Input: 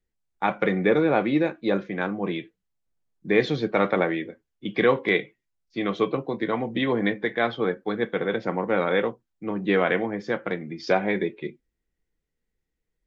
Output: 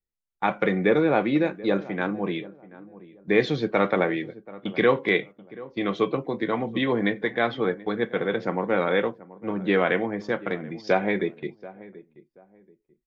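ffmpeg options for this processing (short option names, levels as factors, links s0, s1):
-filter_complex "[0:a]agate=range=0.282:threshold=0.0141:ratio=16:detection=peak,asplit=2[s0][s1];[s1]adelay=732,lowpass=f=1100:p=1,volume=0.126,asplit=2[s2][s3];[s3]adelay=732,lowpass=f=1100:p=1,volume=0.28[s4];[s2][s4]amix=inputs=2:normalize=0[s5];[s0][s5]amix=inputs=2:normalize=0"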